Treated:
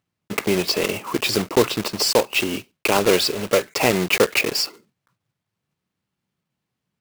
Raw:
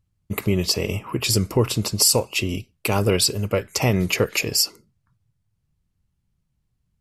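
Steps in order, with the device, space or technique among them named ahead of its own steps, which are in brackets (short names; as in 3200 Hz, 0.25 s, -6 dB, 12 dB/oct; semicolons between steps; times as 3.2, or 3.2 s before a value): early digital voice recorder (BPF 240–3700 Hz; block floating point 3-bit); low shelf 170 Hz -4 dB; gain +5 dB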